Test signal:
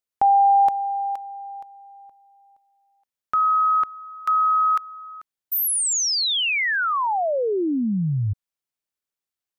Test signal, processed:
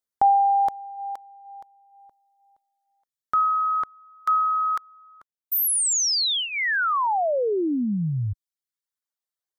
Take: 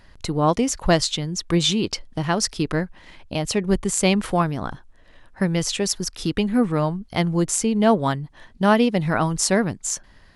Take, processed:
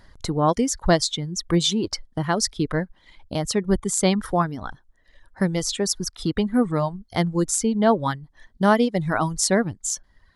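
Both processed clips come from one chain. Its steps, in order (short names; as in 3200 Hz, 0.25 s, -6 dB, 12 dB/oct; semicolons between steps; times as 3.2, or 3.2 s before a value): reverb removal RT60 1.1 s; bell 2600 Hz -13 dB 0.26 oct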